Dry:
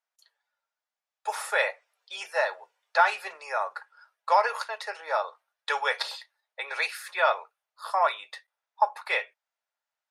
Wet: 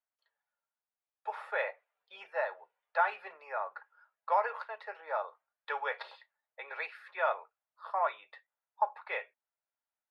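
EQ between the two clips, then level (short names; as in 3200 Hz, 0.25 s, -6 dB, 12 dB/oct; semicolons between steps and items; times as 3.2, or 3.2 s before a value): air absorption 470 m; -5.0 dB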